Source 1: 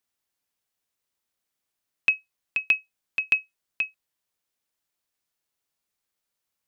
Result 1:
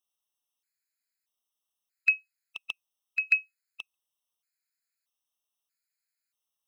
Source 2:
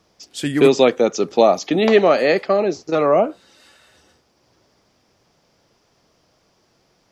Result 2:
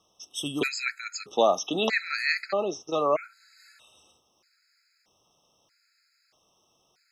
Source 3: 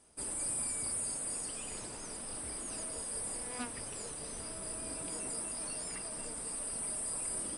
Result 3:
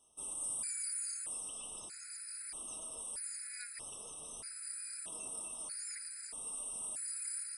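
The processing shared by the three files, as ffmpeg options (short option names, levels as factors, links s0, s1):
-af "tiltshelf=f=790:g=-6.5,afftfilt=real='re*gt(sin(2*PI*0.79*pts/sr)*(1-2*mod(floor(b*sr/1024/1300),2)),0)':imag='im*gt(sin(2*PI*0.79*pts/sr)*(1-2*mod(floor(b*sr/1024/1300),2)),0)':win_size=1024:overlap=0.75,volume=0.473"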